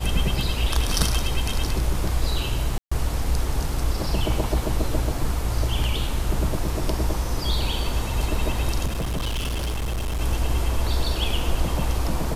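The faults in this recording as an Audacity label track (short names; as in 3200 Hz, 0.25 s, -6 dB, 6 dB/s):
2.780000	2.920000	gap 0.135 s
8.850000	10.210000	clipped -22.5 dBFS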